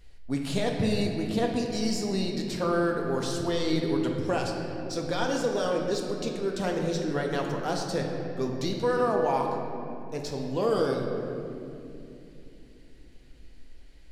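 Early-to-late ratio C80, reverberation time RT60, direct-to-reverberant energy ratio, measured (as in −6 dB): 4.0 dB, 2.8 s, 0.5 dB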